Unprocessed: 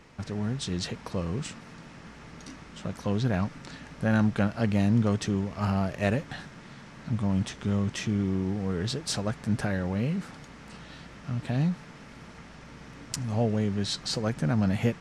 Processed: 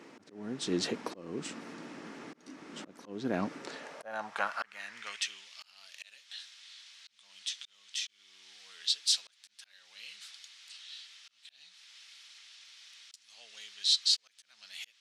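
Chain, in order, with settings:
volume swells 459 ms
high-pass filter sweep 300 Hz → 3,600 Hz, 0:03.43–0:05.51

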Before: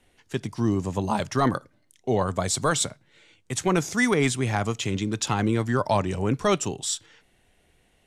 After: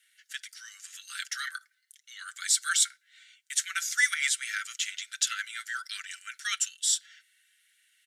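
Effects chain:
Butterworth high-pass 1,400 Hz 96 dB per octave
high-shelf EQ 10,000 Hz +6.5 dB
notch filter 2,500 Hz, Q 12
comb filter 5.9 ms, depth 48%

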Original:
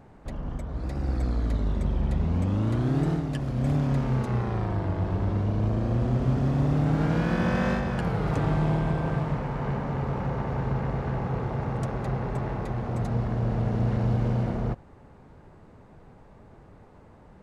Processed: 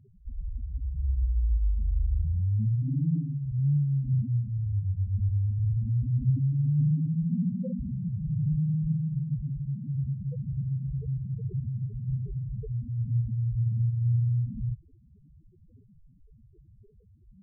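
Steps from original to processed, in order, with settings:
transistor ladder low-pass 630 Hz, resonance 30%
spectral peaks only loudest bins 2
phase shifter 1.9 Hz, delay 2.2 ms, feedback 24%
level +7 dB

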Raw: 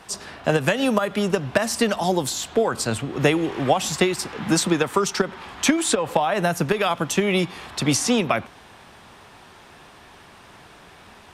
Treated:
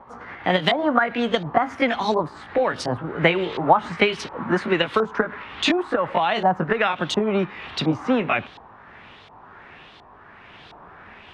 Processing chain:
pitch glide at a constant tempo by +3 semitones ending unshifted
auto-filter low-pass saw up 1.4 Hz 850–4,100 Hz

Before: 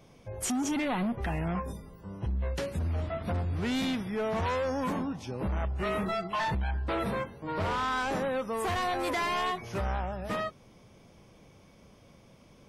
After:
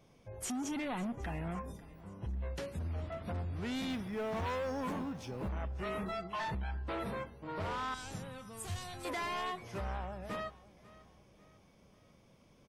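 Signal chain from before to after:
0:03.90–0:05.49: mu-law and A-law mismatch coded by mu
0:07.94–0:09.05: octave-band graphic EQ 125/250/500/1,000/2,000/8,000 Hz +11/−8/−10/−9/−7/+8 dB
repeating echo 545 ms, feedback 43%, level −20 dB
level −7.5 dB

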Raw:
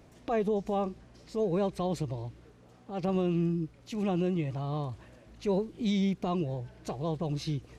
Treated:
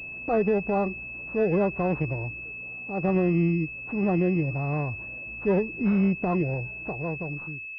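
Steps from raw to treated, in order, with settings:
fade-out on the ending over 1.17 s
switching amplifier with a slow clock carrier 2,600 Hz
level +5.5 dB

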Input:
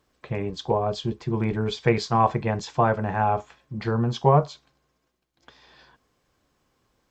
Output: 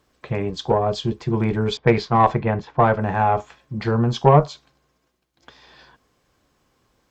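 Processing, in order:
harmonic generator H 4 −23 dB, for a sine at −5 dBFS
0:01.77–0:03.01: low-pass that shuts in the quiet parts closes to 790 Hz, open at −13.5 dBFS
level +4.5 dB

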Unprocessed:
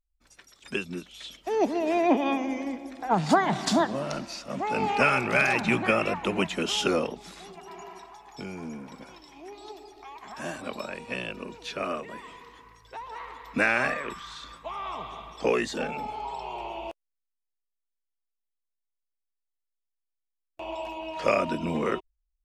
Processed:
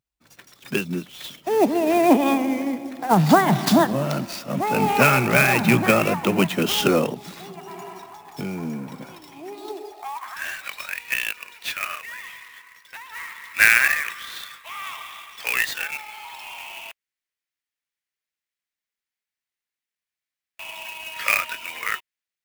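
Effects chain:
high-pass filter sweep 130 Hz → 1,900 Hz, 0:09.37–0:10.45
converter with an unsteady clock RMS 0.023 ms
level +5.5 dB

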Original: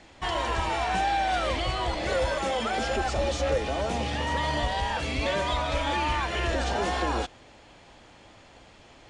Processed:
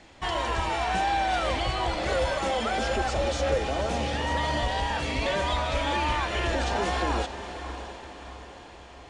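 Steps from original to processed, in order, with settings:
feedback delay with all-pass diffusion 625 ms, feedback 51%, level −11 dB

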